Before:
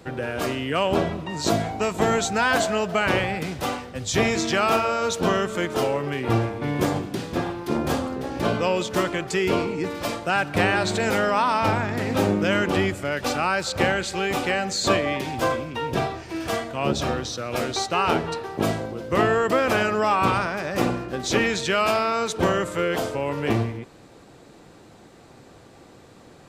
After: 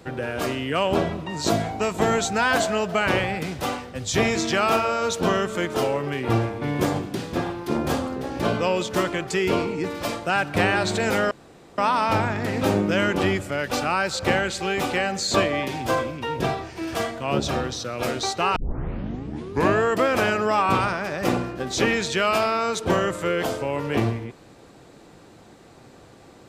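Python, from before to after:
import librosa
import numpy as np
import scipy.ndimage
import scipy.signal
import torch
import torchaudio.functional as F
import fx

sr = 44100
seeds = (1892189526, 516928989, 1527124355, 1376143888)

y = fx.edit(x, sr, fx.insert_room_tone(at_s=11.31, length_s=0.47),
    fx.tape_start(start_s=18.09, length_s=1.25), tone=tone)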